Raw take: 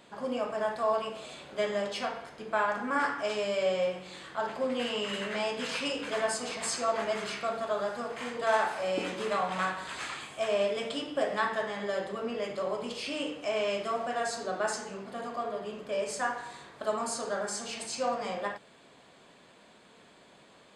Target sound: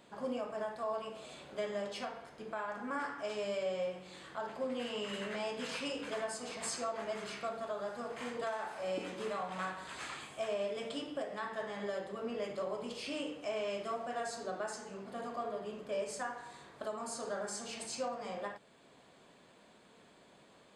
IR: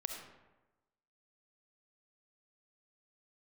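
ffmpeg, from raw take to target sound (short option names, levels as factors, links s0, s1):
-af "equalizer=f=2800:w=0.36:g=-3,alimiter=level_in=1.12:limit=0.0631:level=0:latency=1:release=493,volume=0.891,volume=0.708"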